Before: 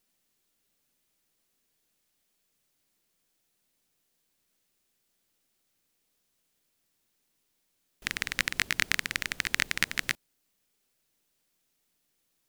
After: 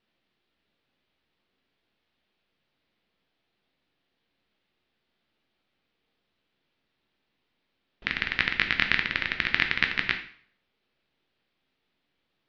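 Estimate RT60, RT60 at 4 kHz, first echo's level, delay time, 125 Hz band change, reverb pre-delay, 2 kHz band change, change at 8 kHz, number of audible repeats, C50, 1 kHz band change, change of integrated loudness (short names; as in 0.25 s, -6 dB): 0.55 s, 0.50 s, none, none, +4.0 dB, 5 ms, +4.5 dB, under -20 dB, none, 10.0 dB, +4.5 dB, +3.5 dB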